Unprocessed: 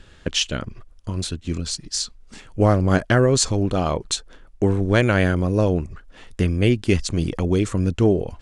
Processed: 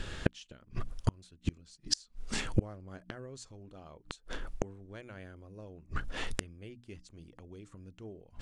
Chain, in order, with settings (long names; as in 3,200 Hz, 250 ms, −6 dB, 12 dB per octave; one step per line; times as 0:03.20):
mains-hum notches 60/120/180/240/300 Hz
gate with flip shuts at −20 dBFS, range −37 dB
level +7.5 dB